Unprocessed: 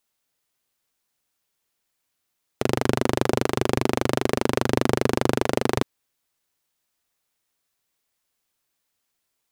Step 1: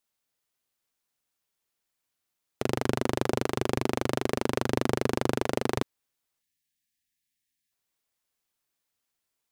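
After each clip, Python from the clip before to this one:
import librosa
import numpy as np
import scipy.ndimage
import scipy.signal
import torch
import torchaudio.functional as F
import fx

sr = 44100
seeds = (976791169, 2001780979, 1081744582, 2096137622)

y = fx.spec_erase(x, sr, start_s=6.42, length_s=1.29, low_hz=320.0, high_hz=1600.0)
y = F.gain(torch.from_numpy(y), -5.5).numpy()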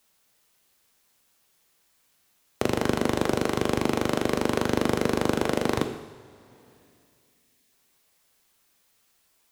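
y = fx.rev_double_slope(x, sr, seeds[0], early_s=0.81, late_s=2.5, knee_db=-20, drr_db=6.0)
y = fx.band_squash(y, sr, depth_pct=40)
y = F.gain(torch.from_numpy(y), 2.5).numpy()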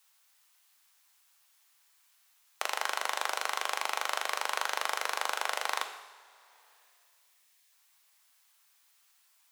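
y = scipy.signal.sosfilt(scipy.signal.butter(4, 820.0, 'highpass', fs=sr, output='sos'), x)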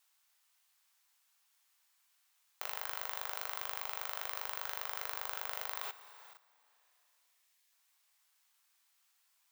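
y = fx.level_steps(x, sr, step_db=15)
y = (np.kron(scipy.signal.resample_poly(y, 1, 2), np.eye(2)[0]) * 2)[:len(y)]
y = F.gain(torch.from_numpy(y), 1.0).numpy()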